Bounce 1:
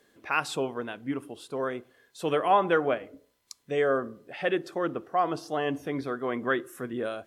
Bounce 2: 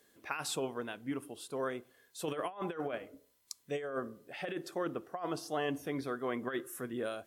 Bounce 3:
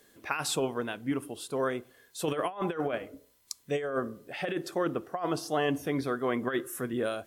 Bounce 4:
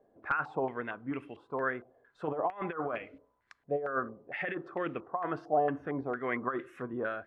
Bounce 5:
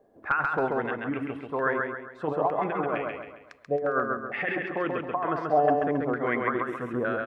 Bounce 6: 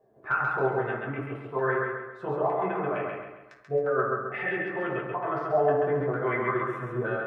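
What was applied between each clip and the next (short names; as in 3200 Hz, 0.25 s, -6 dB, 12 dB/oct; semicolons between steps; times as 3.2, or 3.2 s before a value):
high shelf 6400 Hz +11.5 dB; negative-ratio compressor -27 dBFS, ratio -0.5; gain -7.5 dB
low shelf 110 Hz +5.5 dB; gain +6 dB
wrapped overs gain 16.5 dB; stepped low-pass 4.4 Hz 700–2400 Hz; gain -6 dB
feedback echo 0.135 s, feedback 42%, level -3 dB; gain +5 dB
reverb RT60 0.60 s, pre-delay 4 ms, DRR -5 dB; gain -7.5 dB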